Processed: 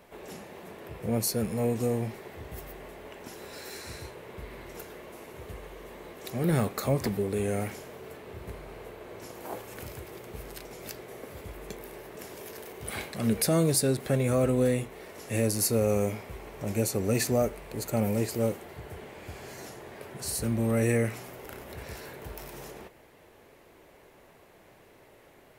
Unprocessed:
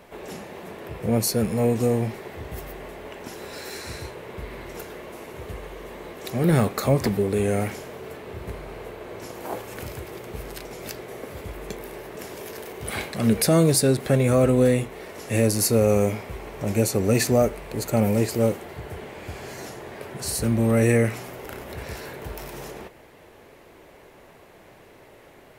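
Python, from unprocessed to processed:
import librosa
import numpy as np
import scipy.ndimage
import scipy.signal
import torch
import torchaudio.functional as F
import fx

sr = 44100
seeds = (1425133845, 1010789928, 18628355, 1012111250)

y = fx.high_shelf(x, sr, hz=8400.0, db=4.0)
y = F.gain(torch.from_numpy(y), -6.5).numpy()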